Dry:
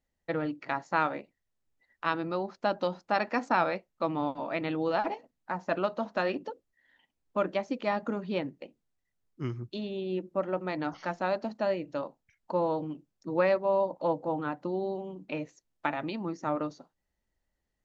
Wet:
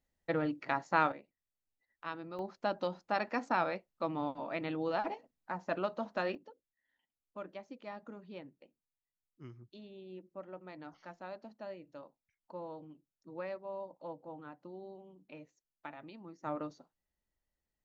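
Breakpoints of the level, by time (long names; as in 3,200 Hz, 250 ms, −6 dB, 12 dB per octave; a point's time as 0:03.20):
−1.5 dB
from 0:01.12 −12 dB
from 0:02.39 −5.5 dB
from 0:06.35 −16 dB
from 0:16.44 −7.5 dB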